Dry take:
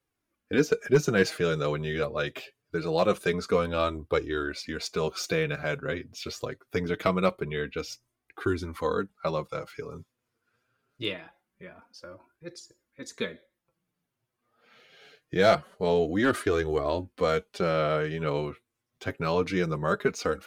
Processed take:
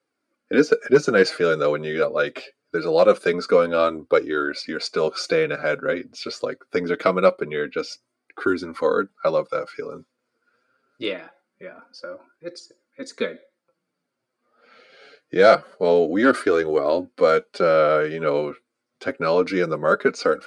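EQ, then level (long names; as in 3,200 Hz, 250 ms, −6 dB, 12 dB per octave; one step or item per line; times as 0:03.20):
loudspeaker in its box 260–9,900 Hz, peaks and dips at 260 Hz +5 dB, 540 Hz +7 dB, 1,400 Hz +9 dB, 2,200 Hz +5 dB, 4,600 Hz +10 dB, 8,900 Hz +5 dB
tilt shelving filter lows +4 dB
+2.5 dB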